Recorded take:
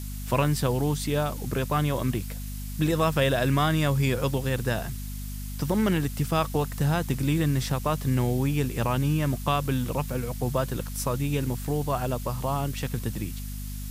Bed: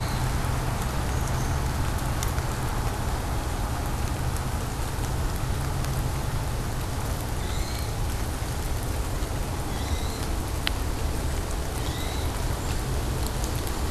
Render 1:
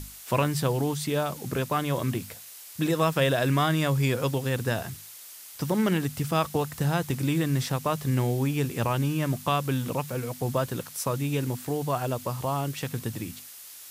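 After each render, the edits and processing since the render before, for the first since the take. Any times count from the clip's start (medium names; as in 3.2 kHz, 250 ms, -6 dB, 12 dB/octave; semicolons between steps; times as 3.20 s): hum notches 50/100/150/200/250 Hz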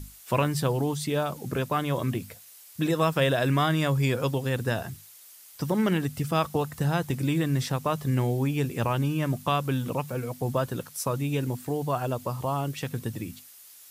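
noise reduction 7 dB, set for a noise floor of -45 dBFS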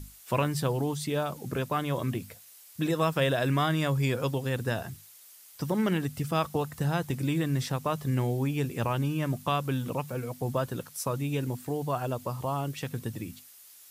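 trim -2.5 dB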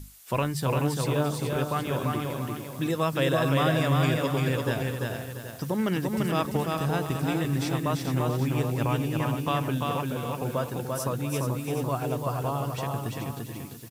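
on a send: delay 430 ms -8 dB; on the sum: bit-crushed delay 342 ms, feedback 35%, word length 9-bit, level -3 dB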